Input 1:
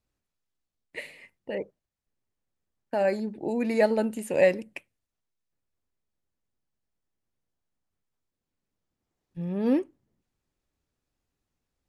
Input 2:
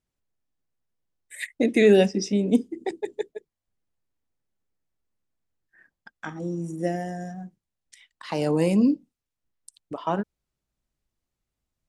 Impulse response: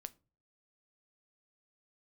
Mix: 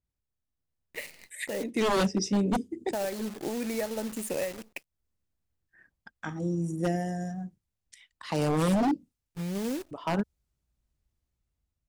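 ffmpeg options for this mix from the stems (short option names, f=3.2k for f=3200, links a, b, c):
-filter_complex "[0:a]acrusher=bits=3:mode=log:mix=0:aa=0.000001,acompressor=threshold=-27dB:ratio=16,acrusher=bits=8:dc=4:mix=0:aa=0.000001,volume=-1dB,asplit=2[a][b];[1:a]dynaudnorm=f=280:g=5:m=6dB,equalizer=f=64:w=0.62:g=12,volume=-8.5dB[c];[b]apad=whole_len=524329[d];[c][d]sidechaincompress=threshold=-47dB:ratio=3:attack=6.4:release=252[e];[a][e]amix=inputs=2:normalize=0,aeval=exprs='0.106*(abs(mod(val(0)/0.106+3,4)-2)-1)':c=same,adynamicequalizer=threshold=0.00282:dfrequency=4500:dqfactor=0.7:tfrequency=4500:tqfactor=0.7:attack=5:release=100:ratio=0.375:range=2.5:mode=boostabove:tftype=highshelf"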